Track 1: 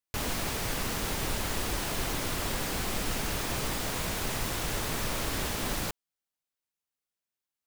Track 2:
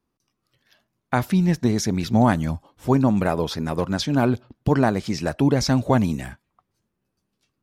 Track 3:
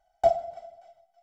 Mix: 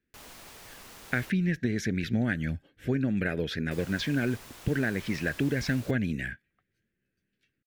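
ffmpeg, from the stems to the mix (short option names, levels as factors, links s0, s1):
-filter_complex "[0:a]lowshelf=f=320:g=-8,volume=0.188,asplit=3[s0][s1][s2];[s0]atrim=end=1.3,asetpts=PTS-STARTPTS,afade=t=out:st=1.296:d=0.004:c=hsin[s3];[s1]atrim=start=1.3:end=3.71,asetpts=PTS-STARTPTS,volume=0[s4];[s2]atrim=start=3.71,asetpts=PTS-STARTPTS,afade=t=in:d=0.004:c=hsin[s5];[s3][s4][s5]concat=n=3:v=0:a=1[s6];[1:a]firequalizer=gain_entry='entry(460,0);entry(1000,-22);entry(1600,11);entry(4900,-8);entry(10000,-13)':delay=0.05:min_phase=1,volume=0.596,highshelf=f=10000:g=10,acompressor=threshold=0.0631:ratio=4,volume=1[s7];[s6][s7]amix=inputs=2:normalize=0"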